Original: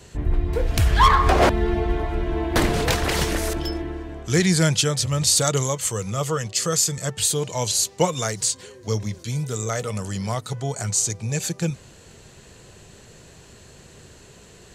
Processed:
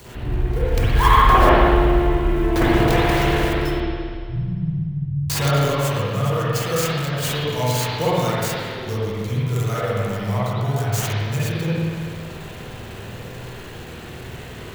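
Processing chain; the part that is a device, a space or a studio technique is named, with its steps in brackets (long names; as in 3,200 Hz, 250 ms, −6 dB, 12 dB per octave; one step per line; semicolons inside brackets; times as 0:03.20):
early CD player with a faulty converter (converter with a step at zero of −33.5 dBFS; converter with an unsteady clock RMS 0.024 ms)
0:03.80–0:05.30: inverse Chebyshev low-pass filter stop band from 600 Hz, stop band 70 dB
spring reverb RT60 2 s, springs 49/57 ms, chirp 75 ms, DRR −9.5 dB
level −7 dB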